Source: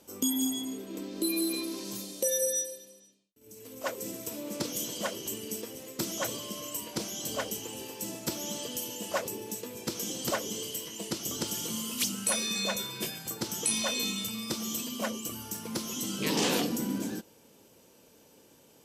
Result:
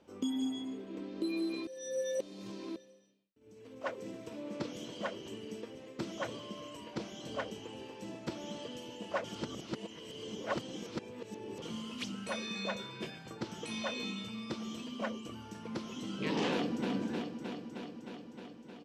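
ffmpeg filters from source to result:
ffmpeg -i in.wav -filter_complex "[0:a]asplit=2[link_01][link_02];[link_02]afade=type=in:start_time=16.51:duration=0.01,afade=type=out:start_time=16.91:duration=0.01,aecho=0:1:310|620|930|1240|1550|1860|2170|2480|2790|3100|3410|3720:0.595662|0.446747|0.33506|0.251295|0.188471|0.141353|0.106015|0.0795113|0.0596335|0.0447251|0.0335438|0.0251579[link_03];[link_01][link_03]amix=inputs=2:normalize=0,asplit=5[link_04][link_05][link_06][link_07][link_08];[link_04]atrim=end=1.672[link_09];[link_05]atrim=start=1.668:end=2.762,asetpts=PTS-STARTPTS,areverse[link_10];[link_06]atrim=start=2.758:end=9.242[link_11];[link_07]atrim=start=9.238:end=11.622,asetpts=PTS-STARTPTS,areverse[link_12];[link_08]atrim=start=11.618[link_13];[link_09][link_10]acrossfade=duration=0.004:curve1=hsin:curve2=hsin[link_14];[link_14][link_11]acrossfade=duration=0.004:curve1=hsin:curve2=hsin[link_15];[link_15][link_12]acrossfade=duration=0.004:curve1=hsin:curve2=hsin[link_16];[link_16][link_13]acrossfade=duration=0.004:curve1=hsin:curve2=hsin,lowpass=2800,volume=-3.5dB" out.wav

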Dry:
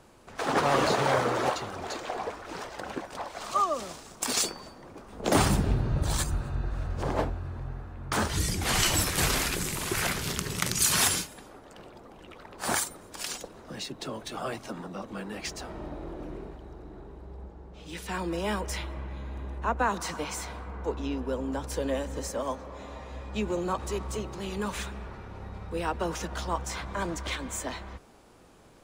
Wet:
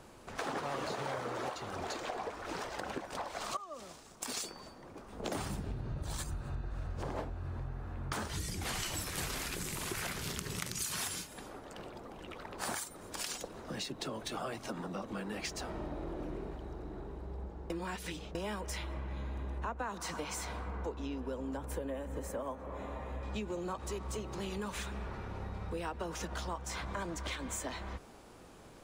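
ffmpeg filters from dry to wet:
ffmpeg -i in.wav -filter_complex "[0:a]asettb=1/sr,asplit=3[link_01][link_02][link_03];[link_01]atrim=end=21.574[link_04];[link_02]atrim=start=21.57:end=23.23,asetpts=PTS-STARTPTS,afade=type=in:duration=0.004:curve=qsin,afade=type=out:start_time=1.656:duration=0.004:curve=qsin,equalizer=frequency=5100:width=1:gain=-14[link_05];[link_03]atrim=start=23.226[link_06];[link_04][link_05]acrossfade=duration=0.004:curve1=hsin:curve2=qsin[link_07];[link_07][link_06]acrossfade=duration=0.004:curve1=qsin:curve2=hsin,asplit=4[link_08][link_09][link_10][link_11];[link_08]atrim=end=3.57,asetpts=PTS-STARTPTS,afade=type=out:start_time=3.566:duration=0.004:curve=hsin:silence=0.199526[link_12];[link_09]atrim=start=3.57:end=17.702,asetpts=PTS-STARTPTS,afade=type=in:duration=3:silence=0.199526[link_13];[link_10]atrim=start=17.698:end=18.352,asetpts=PTS-STARTPTS,areverse[link_14];[link_11]atrim=start=18.348[link_15];[link_12][link_13]concat=n=2:v=0:a=1[link_16];[link_16][link_14]acrossfade=duration=0.004:curve1=hsin:curve2=hsin[link_17];[link_17][link_15]acrossfade=duration=0.004:curve1=hsin:curve2=hsin,acompressor=threshold=-37dB:ratio=6,volume=1dB" out.wav

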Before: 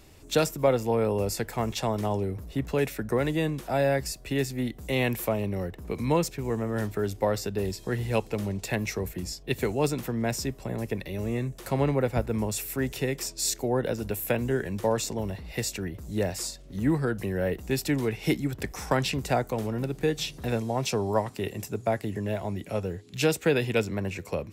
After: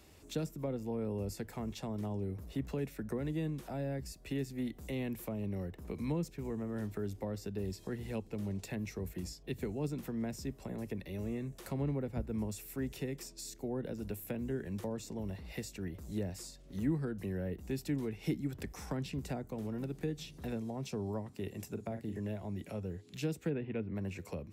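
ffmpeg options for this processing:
ffmpeg -i in.wav -filter_complex "[0:a]asettb=1/sr,asplit=3[link_01][link_02][link_03];[link_01]atrim=end=21.714[link_04];[link_02]atrim=start=21.71:end=22.2,asetpts=PTS-STARTPTS,afade=type=in:duration=0.004:curve=qsin,afade=type=out:start_time=0.486:duration=0.004:curve=qsin,asplit=2[link_05][link_06];[link_06]adelay=43,volume=-8dB[link_07];[link_05][link_07]amix=inputs=2:normalize=0,atrim=end_sample=21609[link_08];[link_03]atrim=start=22.196[link_09];[link_04][link_08]acrossfade=duration=0.004:curve1=hsin:curve2=qsin[link_10];[link_10][link_09]acrossfade=duration=0.004:curve1=qsin:curve2=hsin,asplit=3[link_11][link_12][link_13];[link_11]afade=type=out:start_time=23.49:duration=0.02[link_14];[link_12]lowpass=frequency=2600:width=0.5412,lowpass=frequency=2600:width=1.3066,afade=type=in:start_time=23.49:duration=0.02,afade=type=out:start_time=23.94:duration=0.02[link_15];[link_13]afade=type=in:start_time=23.94:duration=0.02[link_16];[link_14][link_15][link_16]amix=inputs=3:normalize=0,highpass=44,equalizer=frequency=120:width=6.5:gain=-9.5,acrossover=split=330[link_17][link_18];[link_18]acompressor=threshold=-41dB:ratio=4[link_19];[link_17][link_19]amix=inputs=2:normalize=0,volume=-5.5dB" out.wav

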